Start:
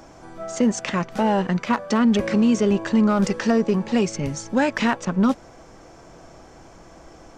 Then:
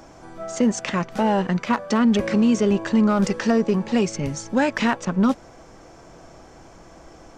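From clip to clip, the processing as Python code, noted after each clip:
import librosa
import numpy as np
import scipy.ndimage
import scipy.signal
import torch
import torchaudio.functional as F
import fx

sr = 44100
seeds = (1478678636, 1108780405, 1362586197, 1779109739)

y = x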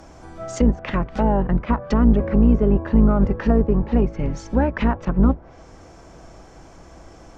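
y = fx.octave_divider(x, sr, octaves=2, level_db=2.0)
y = fx.env_lowpass_down(y, sr, base_hz=1100.0, full_db=-15.5)
y = fx.end_taper(y, sr, db_per_s=350.0)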